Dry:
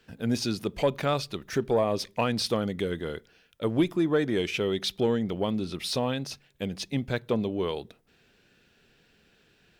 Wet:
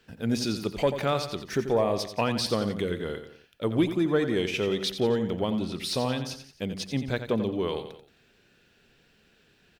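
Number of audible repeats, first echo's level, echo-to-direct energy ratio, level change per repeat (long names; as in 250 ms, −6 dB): 3, −10.0 dB, −9.0 dB, −6.5 dB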